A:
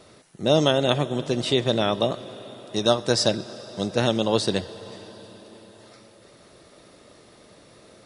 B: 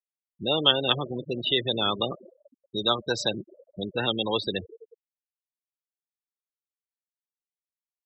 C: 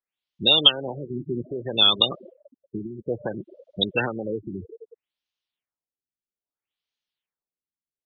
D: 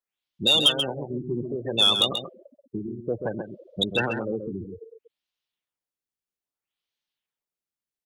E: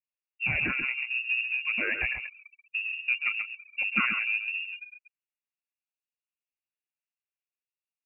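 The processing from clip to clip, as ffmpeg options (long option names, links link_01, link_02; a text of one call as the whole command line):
ffmpeg -i in.wav -filter_complex "[0:a]afftfilt=real='re*gte(hypot(re,im),0.0794)':imag='im*gte(hypot(re,im),0.0794)':win_size=1024:overlap=0.75,equalizer=frequency=630:width_type=o:width=0.33:gain=-10,equalizer=frequency=1250:width_type=o:width=0.33:gain=4,equalizer=frequency=2000:width_type=o:width=0.33:gain=9,equalizer=frequency=3150:width_type=o:width=0.33:gain=11,equalizer=frequency=5000:width_type=o:width=0.33:gain=-12,acrossover=split=400|1300[link_01][link_02][link_03];[link_01]alimiter=level_in=3dB:limit=-24dB:level=0:latency=1:release=91,volume=-3dB[link_04];[link_04][link_02][link_03]amix=inputs=3:normalize=0,volume=-1.5dB" out.wav
ffmpeg -i in.wav -af "equalizer=frequency=3300:width=1.3:gain=13,acompressor=threshold=-22dB:ratio=2,afftfilt=real='re*lt(b*sr/1024,380*pow(7000/380,0.5+0.5*sin(2*PI*0.61*pts/sr)))':imag='im*lt(b*sr/1024,380*pow(7000/380,0.5+0.5*sin(2*PI*0.61*pts/sr)))':win_size=1024:overlap=0.75,volume=4.5dB" out.wav
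ffmpeg -i in.wav -filter_complex "[0:a]asoftclip=type=tanh:threshold=-11dB,asplit=2[link_01][link_02];[link_02]adelay=134.1,volume=-7dB,highshelf=frequency=4000:gain=-3.02[link_03];[link_01][link_03]amix=inputs=2:normalize=0" out.wav
ffmpeg -i in.wav -af "adynamicsmooth=sensitivity=6:basefreq=780,lowpass=frequency=2500:width_type=q:width=0.5098,lowpass=frequency=2500:width_type=q:width=0.6013,lowpass=frequency=2500:width_type=q:width=0.9,lowpass=frequency=2500:width_type=q:width=2.563,afreqshift=-2900" out.wav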